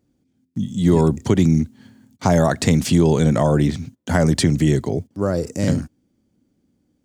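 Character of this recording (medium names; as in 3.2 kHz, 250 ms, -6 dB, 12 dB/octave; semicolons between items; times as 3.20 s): noise floor -68 dBFS; spectral tilt -7.0 dB/octave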